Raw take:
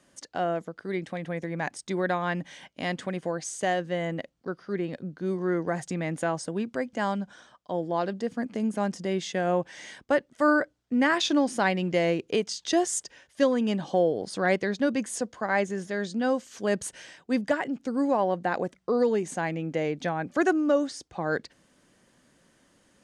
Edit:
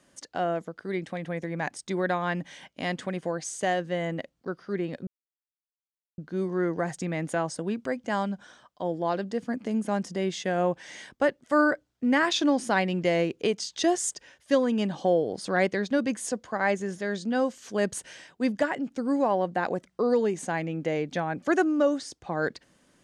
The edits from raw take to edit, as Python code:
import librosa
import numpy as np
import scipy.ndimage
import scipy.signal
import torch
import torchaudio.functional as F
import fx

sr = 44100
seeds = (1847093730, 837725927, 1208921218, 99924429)

y = fx.edit(x, sr, fx.insert_silence(at_s=5.07, length_s=1.11), tone=tone)